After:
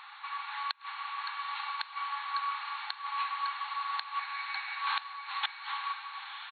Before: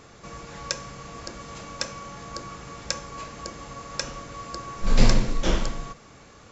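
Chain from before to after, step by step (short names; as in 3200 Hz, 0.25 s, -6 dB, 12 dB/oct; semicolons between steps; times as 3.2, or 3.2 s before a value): 4.19–4.82 minimum comb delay 0.47 ms; brick-wall FIR band-pass 760–4400 Hz; echo 0.104 s -15.5 dB; flipped gate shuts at -24 dBFS, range -33 dB; diffused feedback echo 0.961 s, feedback 52%, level -8 dB; gain +5.5 dB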